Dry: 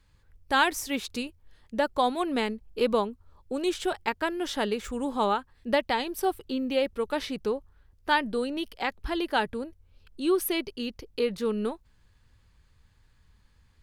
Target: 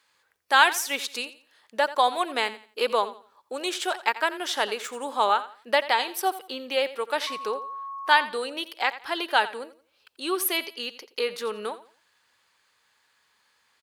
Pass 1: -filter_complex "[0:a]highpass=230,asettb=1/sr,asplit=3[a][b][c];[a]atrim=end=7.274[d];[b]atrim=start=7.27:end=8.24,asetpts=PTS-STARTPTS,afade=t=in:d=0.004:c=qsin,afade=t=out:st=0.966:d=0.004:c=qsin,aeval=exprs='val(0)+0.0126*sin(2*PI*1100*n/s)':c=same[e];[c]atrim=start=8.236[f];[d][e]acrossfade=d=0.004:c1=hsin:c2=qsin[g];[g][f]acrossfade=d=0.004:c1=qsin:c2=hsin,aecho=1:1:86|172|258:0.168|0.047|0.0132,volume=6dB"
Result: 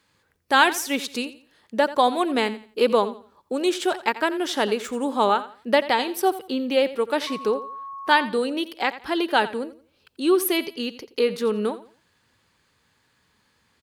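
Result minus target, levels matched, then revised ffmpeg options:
250 Hz band +10.0 dB
-filter_complex "[0:a]highpass=680,asettb=1/sr,asplit=3[a][b][c];[a]atrim=end=7.274[d];[b]atrim=start=7.27:end=8.24,asetpts=PTS-STARTPTS,afade=t=in:d=0.004:c=qsin,afade=t=out:st=0.966:d=0.004:c=qsin,aeval=exprs='val(0)+0.0126*sin(2*PI*1100*n/s)':c=same[e];[c]atrim=start=8.236[f];[d][e]acrossfade=d=0.004:c1=hsin:c2=qsin[g];[g][f]acrossfade=d=0.004:c1=qsin:c2=hsin,aecho=1:1:86|172|258:0.168|0.047|0.0132,volume=6dB"

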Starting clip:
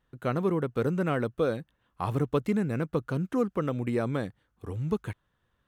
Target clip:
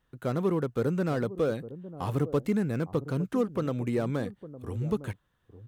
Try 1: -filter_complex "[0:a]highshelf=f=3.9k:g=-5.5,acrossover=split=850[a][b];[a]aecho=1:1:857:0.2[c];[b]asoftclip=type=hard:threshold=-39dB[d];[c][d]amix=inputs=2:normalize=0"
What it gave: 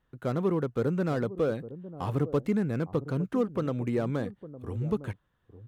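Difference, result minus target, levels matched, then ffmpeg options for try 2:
8000 Hz band -4.5 dB
-filter_complex "[0:a]highshelf=f=3.9k:g=3,acrossover=split=850[a][b];[a]aecho=1:1:857:0.2[c];[b]asoftclip=type=hard:threshold=-39dB[d];[c][d]amix=inputs=2:normalize=0"

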